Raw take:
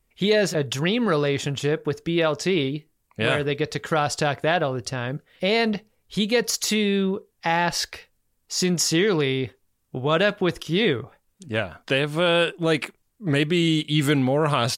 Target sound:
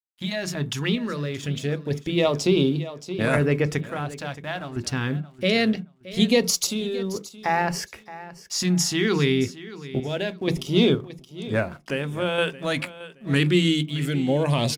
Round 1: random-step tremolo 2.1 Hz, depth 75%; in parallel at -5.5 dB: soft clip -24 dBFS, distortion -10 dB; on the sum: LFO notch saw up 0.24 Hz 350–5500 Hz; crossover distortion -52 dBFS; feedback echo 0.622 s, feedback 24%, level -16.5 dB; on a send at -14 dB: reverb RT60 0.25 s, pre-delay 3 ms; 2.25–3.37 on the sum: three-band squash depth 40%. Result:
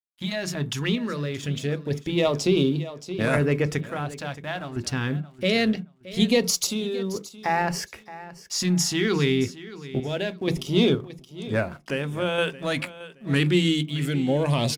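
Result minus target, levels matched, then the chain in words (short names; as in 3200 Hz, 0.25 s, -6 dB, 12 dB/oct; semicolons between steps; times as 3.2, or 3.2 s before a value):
soft clip: distortion +11 dB
random-step tremolo 2.1 Hz, depth 75%; in parallel at -5.5 dB: soft clip -14.5 dBFS, distortion -21 dB; on the sum: LFO notch saw up 0.24 Hz 350–5500 Hz; crossover distortion -52 dBFS; feedback echo 0.622 s, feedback 24%, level -16.5 dB; on a send at -14 dB: reverb RT60 0.25 s, pre-delay 3 ms; 2.25–3.37 on the sum: three-band squash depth 40%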